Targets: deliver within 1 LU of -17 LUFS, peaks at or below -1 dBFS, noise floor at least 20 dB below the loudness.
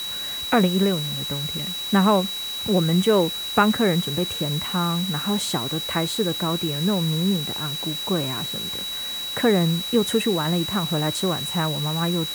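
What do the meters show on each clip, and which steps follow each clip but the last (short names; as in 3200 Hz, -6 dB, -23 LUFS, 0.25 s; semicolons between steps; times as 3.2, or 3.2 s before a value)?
steady tone 3900 Hz; tone level -28 dBFS; noise floor -30 dBFS; noise floor target -43 dBFS; loudness -22.5 LUFS; peak -5.0 dBFS; loudness target -17.0 LUFS
-> notch 3900 Hz, Q 30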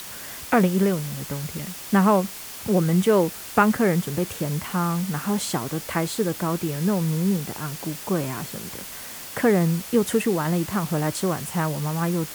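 steady tone none; noise floor -37 dBFS; noise floor target -44 dBFS
-> denoiser 7 dB, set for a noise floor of -37 dBFS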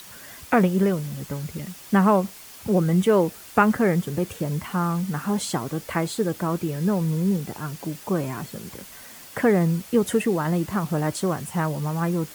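noise floor -44 dBFS; loudness -24.0 LUFS; peak -5.5 dBFS; loudness target -17.0 LUFS
-> gain +7 dB; limiter -1 dBFS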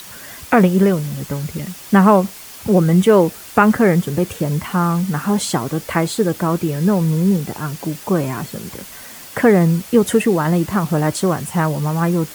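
loudness -17.0 LUFS; peak -1.0 dBFS; noise floor -37 dBFS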